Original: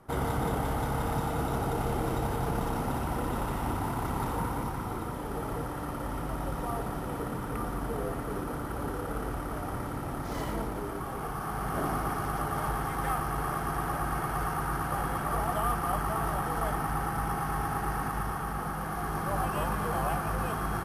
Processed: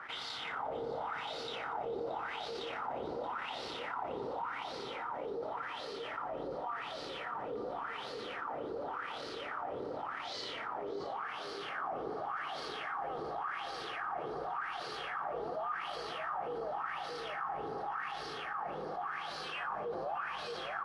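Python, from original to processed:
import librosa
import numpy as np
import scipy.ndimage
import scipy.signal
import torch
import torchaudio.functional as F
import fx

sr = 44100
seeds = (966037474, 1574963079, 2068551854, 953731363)

p1 = fx.high_shelf(x, sr, hz=2700.0, db=10.0)
p2 = fx.filter_lfo_bandpass(p1, sr, shape='sine', hz=0.89, low_hz=440.0, high_hz=4400.0, q=5.0)
p3 = fx.air_absorb(p2, sr, metres=120.0)
p4 = p3 + fx.echo_single(p3, sr, ms=625, db=-11.5, dry=0)
p5 = fx.env_flatten(p4, sr, amount_pct=70)
y = p5 * 10.0 ** (-5.0 / 20.0)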